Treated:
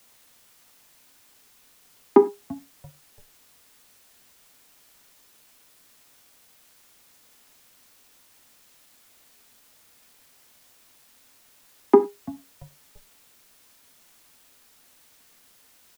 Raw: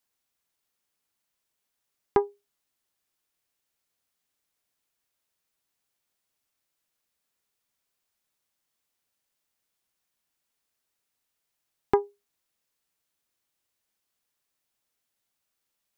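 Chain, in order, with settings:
Butterworth high-pass 190 Hz 96 dB per octave
spectral tilt −4.5 dB per octave
comb filter 3.3 ms, depth 96%
bit-depth reduction 10 bits, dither triangular
echo with shifted repeats 339 ms, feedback 39%, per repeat −130 Hz, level −23 dB
reverb whose tail is shaped and stops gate 130 ms falling, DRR 10 dB
level +2 dB

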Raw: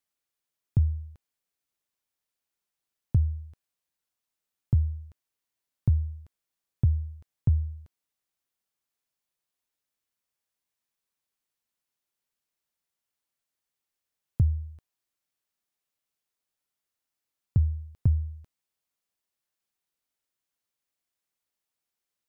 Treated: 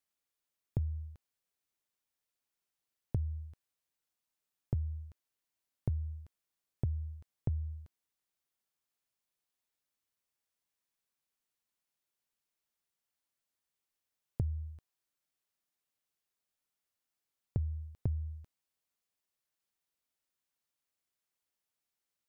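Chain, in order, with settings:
downward compressor, threshold −28 dBFS, peak gain reduction 10 dB
level −2.5 dB

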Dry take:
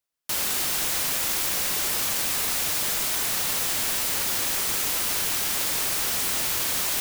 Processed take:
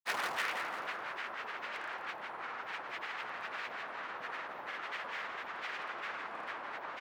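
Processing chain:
turntable start at the beginning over 1.29 s
low-pass filter 1,400 Hz 24 dB per octave
low-shelf EQ 120 Hz −6 dB
gain into a clipping stage and back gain 27 dB
granular cloud, pitch spread up and down by 7 semitones
first difference
repeating echo 170 ms, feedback 53%, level −9.5 dB
level +13.5 dB

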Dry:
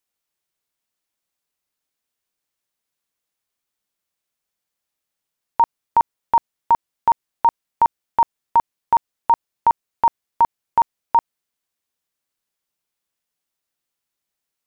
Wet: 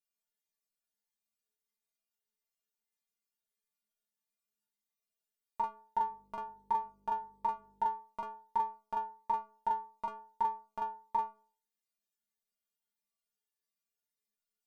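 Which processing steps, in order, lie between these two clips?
0:06.00–0:07.85: hum with harmonics 50 Hz, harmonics 11, −52 dBFS −4 dB per octave
stiff-string resonator 210 Hz, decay 0.43 s, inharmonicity 0.008
phaser whose notches keep moving one way rising 1.6 Hz
level +4 dB

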